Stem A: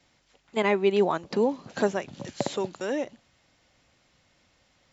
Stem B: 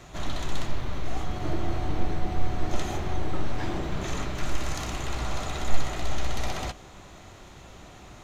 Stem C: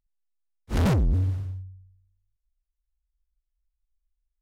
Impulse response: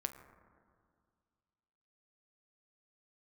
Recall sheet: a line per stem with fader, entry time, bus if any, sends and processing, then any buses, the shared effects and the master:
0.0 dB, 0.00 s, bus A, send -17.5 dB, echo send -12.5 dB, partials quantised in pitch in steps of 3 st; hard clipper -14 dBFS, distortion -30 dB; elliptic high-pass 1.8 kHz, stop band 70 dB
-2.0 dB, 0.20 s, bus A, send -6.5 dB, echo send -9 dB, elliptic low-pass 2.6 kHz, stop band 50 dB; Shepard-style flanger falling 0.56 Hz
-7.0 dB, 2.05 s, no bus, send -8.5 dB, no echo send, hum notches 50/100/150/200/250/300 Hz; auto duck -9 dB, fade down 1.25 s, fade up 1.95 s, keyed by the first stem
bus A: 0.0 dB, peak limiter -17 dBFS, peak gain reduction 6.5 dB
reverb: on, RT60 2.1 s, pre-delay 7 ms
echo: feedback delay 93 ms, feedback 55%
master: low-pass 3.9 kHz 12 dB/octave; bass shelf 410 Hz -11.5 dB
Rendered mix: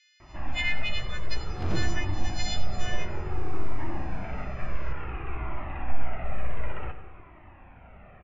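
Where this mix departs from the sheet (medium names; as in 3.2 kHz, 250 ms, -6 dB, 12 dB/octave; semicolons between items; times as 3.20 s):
stem C: entry 2.05 s -> 0.85 s; master: missing bass shelf 410 Hz -11.5 dB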